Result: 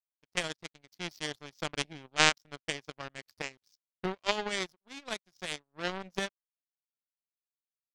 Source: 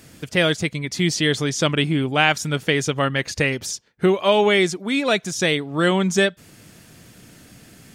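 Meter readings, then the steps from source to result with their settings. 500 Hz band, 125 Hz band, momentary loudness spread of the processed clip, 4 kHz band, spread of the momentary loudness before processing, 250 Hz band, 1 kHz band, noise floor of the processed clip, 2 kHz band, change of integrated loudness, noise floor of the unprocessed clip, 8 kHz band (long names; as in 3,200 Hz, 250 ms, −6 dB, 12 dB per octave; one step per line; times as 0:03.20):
−19.0 dB, −22.0 dB, 16 LU, −11.0 dB, 5 LU, −21.0 dB, −12.5 dB, below −85 dBFS, −12.5 dB, −14.0 dB, −49 dBFS, −11.5 dB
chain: high shelf with overshoot 6,200 Hz −6 dB, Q 3
power curve on the samples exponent 3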